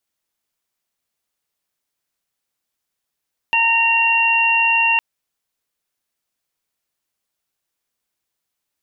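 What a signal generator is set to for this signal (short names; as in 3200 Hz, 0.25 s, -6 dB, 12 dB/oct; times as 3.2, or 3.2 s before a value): steady additive tone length 1.46 s, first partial 919 Hz, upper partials -7/5 dB, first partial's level -19 dB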